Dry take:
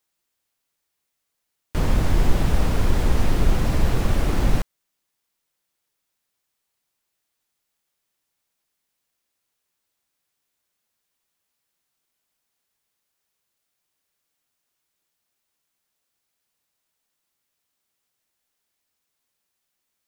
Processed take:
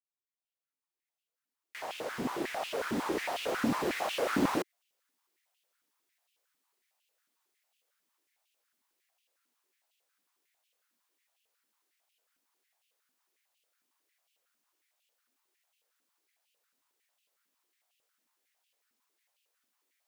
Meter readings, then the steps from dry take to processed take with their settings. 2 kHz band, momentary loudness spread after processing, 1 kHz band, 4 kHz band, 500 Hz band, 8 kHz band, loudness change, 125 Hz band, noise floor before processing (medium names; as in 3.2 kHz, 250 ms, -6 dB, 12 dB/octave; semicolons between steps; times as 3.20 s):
-3.0 dB, 11 LU, -3.0 dB, -4.5 dB, -4.0 dB, -7.0 dB, -9.5 dB, -24.0 dB, -79 dBFS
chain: fade-in on the opening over 5.41 s; step-sequenced high-pass 11 Hz 250–2800 Hz; trim -3 dB